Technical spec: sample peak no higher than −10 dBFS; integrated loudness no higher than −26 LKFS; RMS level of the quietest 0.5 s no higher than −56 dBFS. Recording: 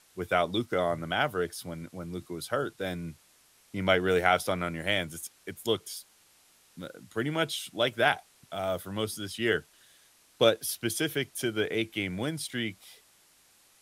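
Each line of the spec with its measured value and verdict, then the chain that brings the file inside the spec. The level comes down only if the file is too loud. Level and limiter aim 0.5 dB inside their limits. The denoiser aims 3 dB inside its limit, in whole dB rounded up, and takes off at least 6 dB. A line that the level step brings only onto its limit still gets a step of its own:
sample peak −7.0 dBFS: out of spec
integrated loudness −30.0 LKFS: in spec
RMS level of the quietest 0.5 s −62 dBFS: in spec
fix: brickwall limiter −10.5 dBFS

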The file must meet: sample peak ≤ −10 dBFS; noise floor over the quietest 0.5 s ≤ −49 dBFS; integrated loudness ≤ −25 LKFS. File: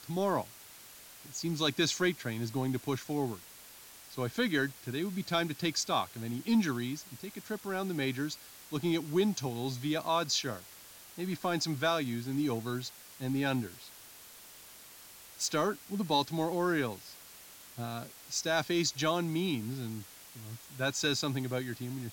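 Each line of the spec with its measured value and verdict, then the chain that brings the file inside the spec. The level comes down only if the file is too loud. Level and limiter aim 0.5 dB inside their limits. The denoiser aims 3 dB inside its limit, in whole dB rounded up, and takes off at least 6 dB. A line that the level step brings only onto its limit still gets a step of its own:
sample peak −16.5 dBFS: in spec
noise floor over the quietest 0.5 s −53 dBFS: in spec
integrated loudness −33.0 LKFS: in spec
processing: no processing needed

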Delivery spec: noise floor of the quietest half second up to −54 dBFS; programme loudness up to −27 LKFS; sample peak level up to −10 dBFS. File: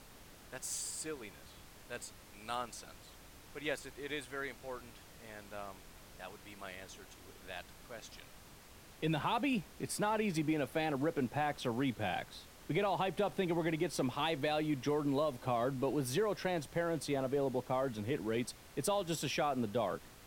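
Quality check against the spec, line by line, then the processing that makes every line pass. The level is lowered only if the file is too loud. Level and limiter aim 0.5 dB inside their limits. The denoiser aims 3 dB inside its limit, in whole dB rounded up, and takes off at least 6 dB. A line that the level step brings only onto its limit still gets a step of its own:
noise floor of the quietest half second −57 dBFS: in spec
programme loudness −37.0 LKFS: in spec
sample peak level −22.5 dBFS: in spec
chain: no processing needed

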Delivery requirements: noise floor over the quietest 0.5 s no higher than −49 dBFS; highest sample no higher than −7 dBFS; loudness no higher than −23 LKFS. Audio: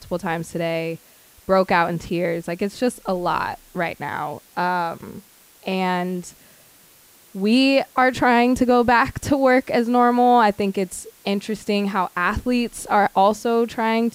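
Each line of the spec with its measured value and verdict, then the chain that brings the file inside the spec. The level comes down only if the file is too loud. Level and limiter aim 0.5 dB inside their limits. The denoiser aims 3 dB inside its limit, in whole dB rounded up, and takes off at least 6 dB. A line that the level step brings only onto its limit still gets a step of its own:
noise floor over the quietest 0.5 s −51 dBFS: in spec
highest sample −6.0 dBFS: out of spec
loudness −20.5 LKFS: out of spec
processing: level −3 dB

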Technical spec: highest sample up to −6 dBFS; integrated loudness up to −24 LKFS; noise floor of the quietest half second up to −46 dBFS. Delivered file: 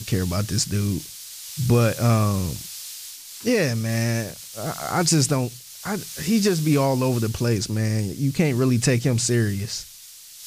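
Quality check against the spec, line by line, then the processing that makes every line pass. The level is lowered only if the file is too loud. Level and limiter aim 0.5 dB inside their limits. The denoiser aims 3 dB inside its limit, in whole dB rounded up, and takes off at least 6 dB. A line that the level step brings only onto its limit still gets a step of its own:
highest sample −7.0 dBFS: in spec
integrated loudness −22.5 LKFS: out of spec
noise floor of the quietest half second −44 dBFS: out of spec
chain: broadband denoise 6 dB, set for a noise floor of −44 dBFS
level −2 dB

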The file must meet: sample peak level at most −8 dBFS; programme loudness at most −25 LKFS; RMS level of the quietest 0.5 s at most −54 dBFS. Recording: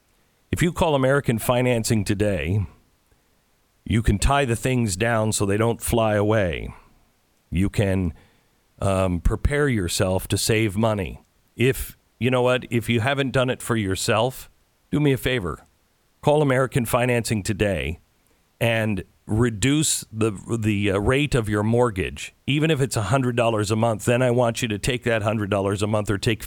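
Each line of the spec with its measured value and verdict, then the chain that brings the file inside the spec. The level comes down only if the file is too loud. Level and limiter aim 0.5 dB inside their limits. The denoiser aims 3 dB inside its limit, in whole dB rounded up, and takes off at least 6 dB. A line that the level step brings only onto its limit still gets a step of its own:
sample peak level −6.5 dBFS: out of spec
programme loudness −22.0 LKFS: out of spec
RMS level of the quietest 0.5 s −64 dBFS: in spec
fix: level −3.5 dB

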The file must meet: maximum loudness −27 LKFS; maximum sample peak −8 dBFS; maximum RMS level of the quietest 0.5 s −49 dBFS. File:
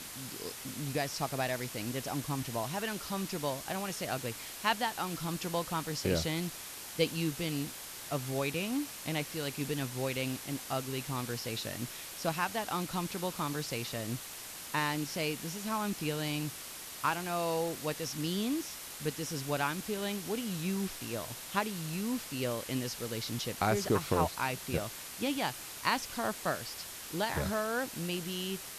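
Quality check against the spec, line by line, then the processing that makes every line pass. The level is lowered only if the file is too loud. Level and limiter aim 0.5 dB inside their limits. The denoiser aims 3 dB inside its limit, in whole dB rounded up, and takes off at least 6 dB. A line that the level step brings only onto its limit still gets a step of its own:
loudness −35.0 LKFS: in spec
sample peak −14.0 dBFS: in spec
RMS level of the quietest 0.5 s −45 dBFS: out of spec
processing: broadband denoise 7 dB, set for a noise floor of −45 dBFS

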